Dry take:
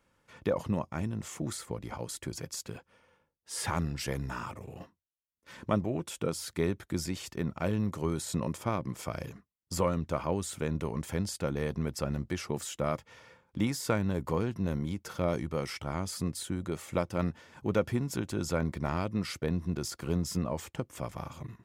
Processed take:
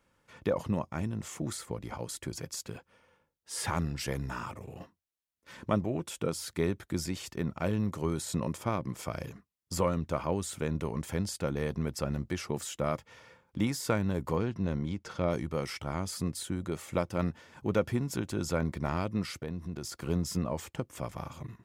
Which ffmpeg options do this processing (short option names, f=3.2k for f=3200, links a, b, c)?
-filter_complex "[0:a]asettb=1/sr,asplit=3[a][b][c];[a]atrim=end=14.374[d];[b]atrim=start=14.37:end=15.31,asetpts=PTS-STARTPTS,afade=t=in:d=0.004:c=qsin,afade=t=out:st=0.936:d=0.004:c=qsin,lowpass=6k[e];[c]atrim=start=15.306[f];[d][e]acrossfade=d=0.004:c1=hsin:c2=qsin[g];[g][f]acrossfade=d=0.004:c1=qsin:c2=hsin,asettb=1/sr,asplit=3[h][i][j];[h]atrim=end=19.244[k];[i]atrim=start=19.24:end=20.01,asetpts=PTS-STARTPTS,afade=t=in:d=0.004:c=qsin,afade=t=out:st=0.766:d=0.004:c=qsin,acompressor=threshold=-37dB:ratio=2:attack=3.2:release=140:knee=1:detection=peak[l];[j]atrim=start=20.006[m];[k][l]acrossfade=d=0.004:c1=hsin:c2=qsin[n];[n][m]acrossfade=d=0.004:c1=qsin:c2=hsin"